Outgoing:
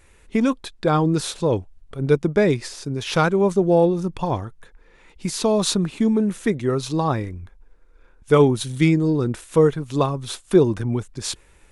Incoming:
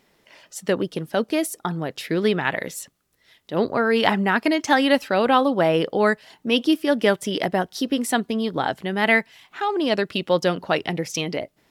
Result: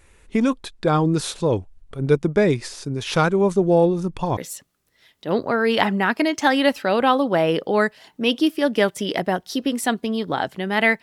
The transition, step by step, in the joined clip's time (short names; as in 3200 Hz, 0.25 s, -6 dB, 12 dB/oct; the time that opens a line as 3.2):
outgoing
4.37 switch to incoming from 2.63 s